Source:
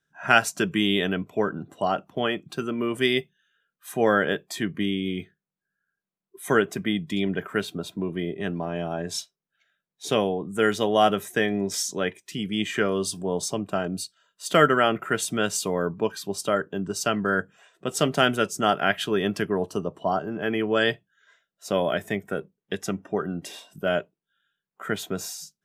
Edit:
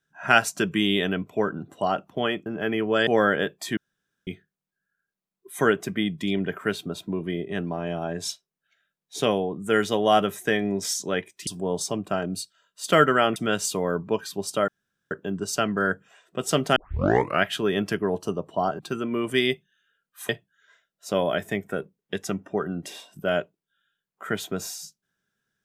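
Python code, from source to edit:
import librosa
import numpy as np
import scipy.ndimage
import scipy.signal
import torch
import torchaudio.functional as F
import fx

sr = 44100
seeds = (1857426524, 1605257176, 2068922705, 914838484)

y = fx.edit(x, sr, fx.swap(start_s=2.46, length_s=1.5, other_s=20.27, other_length_s=0.61),
    fx.room_tone_fill(start_s=4.66, length_s=0.5),
    fx.cut(start_s=12.36, length_s=0.73),
    fx.cut(start_s=14.98, length_s=0.29),
    fx.insert_room_tone(at_s=16.59, length_s=0.43),
    fx.tape_start(start_s=18.24, length_s=0.67), tone=tone)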